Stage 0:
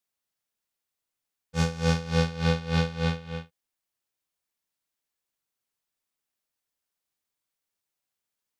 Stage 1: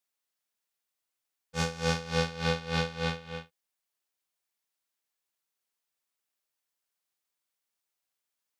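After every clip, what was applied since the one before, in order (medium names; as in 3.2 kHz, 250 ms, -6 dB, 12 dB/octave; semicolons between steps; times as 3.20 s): bass shelf 260 Hz -10 dB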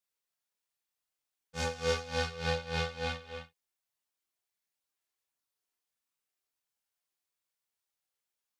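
chorus voices 4, 0.72 Hz, delay 27 ms, depth 1.5 ms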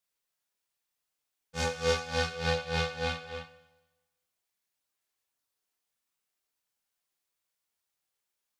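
Schroeder reverb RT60 1.1 s, combs from 31 ms, DRR 13 dB; trim +3 dB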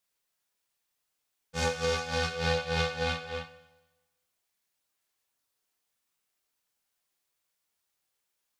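peak limiter -20 dBFS, peak gain reduction 7.5 dB; trim +3.5 dB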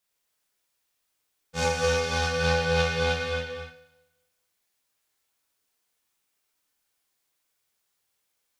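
gated-style reverb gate 300 ms flat, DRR 0.5 dB; trim +1.5 dB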